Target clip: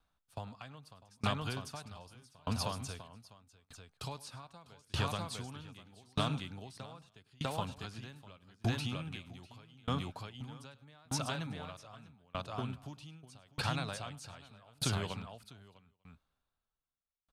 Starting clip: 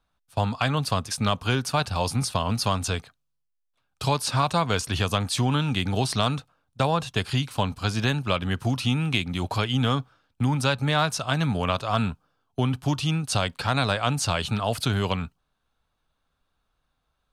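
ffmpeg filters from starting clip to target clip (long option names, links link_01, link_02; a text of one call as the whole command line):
ffmpeg -i in.wav -af "acompressor=threshold=-29dB:ratio=2.5,aecho=1:1:102|649|895:0.158|0.668|0.126,aeval=exprs='val(0)*pow(10,-32*if(lt(mod(0.81*n/s,1),2*abs(0.81)/1000),1-mod(0.81*n/s,1)/(2*abs(0.81)/1000),(mod(0.81*n/s,1)-2*abs(0.81)/1000)/(1-2*abs(0.81)/1000))/20)':channel_layout=same,volume=-2.5dB" out.wav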